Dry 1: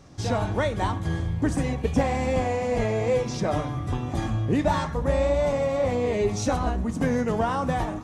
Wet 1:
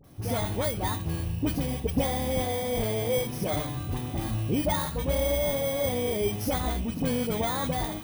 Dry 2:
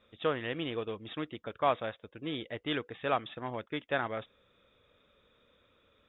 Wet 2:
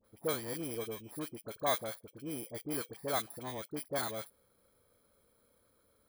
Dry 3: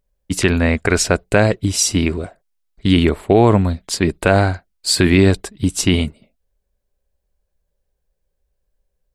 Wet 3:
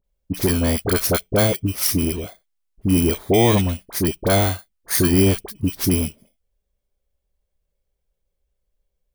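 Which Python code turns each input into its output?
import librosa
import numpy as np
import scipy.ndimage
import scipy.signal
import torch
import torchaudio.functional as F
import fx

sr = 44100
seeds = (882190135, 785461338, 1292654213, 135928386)

y = fx.bit_reversed(x, sr, seeds[0], block=16)
y = fx.dispersion(y, sr, late='highs', ms=42.0, hz=1100.0)
y = y * librosa.db_to_amplitude(-3.5)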